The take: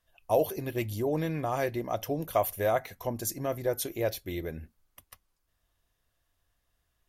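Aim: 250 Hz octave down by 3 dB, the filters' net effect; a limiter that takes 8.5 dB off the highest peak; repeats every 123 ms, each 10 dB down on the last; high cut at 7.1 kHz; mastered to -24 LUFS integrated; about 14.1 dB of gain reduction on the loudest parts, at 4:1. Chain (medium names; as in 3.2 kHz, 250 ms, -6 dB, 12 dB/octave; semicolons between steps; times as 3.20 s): low-pass 7.1 kHz; peaking EQ 250 Hz -4.5 dB; compression 4:1, threshold -38 dBFS; peak limiter -32.5 dBFS; feedback delay 123 ms, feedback 32%, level -10 dB; trim +19 dB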